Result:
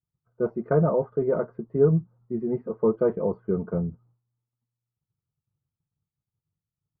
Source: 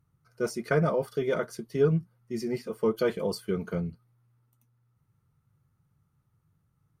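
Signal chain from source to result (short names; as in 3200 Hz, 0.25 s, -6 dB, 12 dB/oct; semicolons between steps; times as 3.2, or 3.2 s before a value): expander -56 dBFS; LPF 1100 Hz 24 dB/oct; gain +4 dB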